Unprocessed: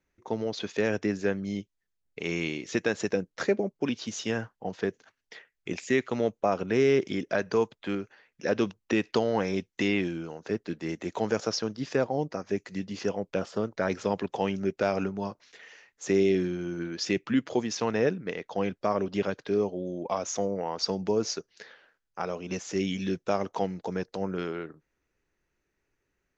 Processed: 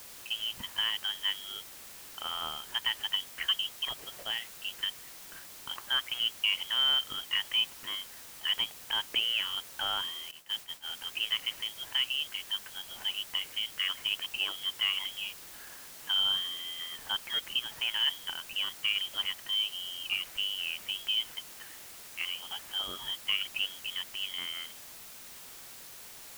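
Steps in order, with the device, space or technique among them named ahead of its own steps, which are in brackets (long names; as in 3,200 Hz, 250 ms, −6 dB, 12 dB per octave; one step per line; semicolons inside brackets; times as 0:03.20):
scrambled radio voice (band-pass filter 350–3,100 Hz; voice inversion scrambler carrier 3,500 Hz; white noise bed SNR 13 dB)
0:10.31–0:10.95: downward expander −34 dBFS
level −2.5 dB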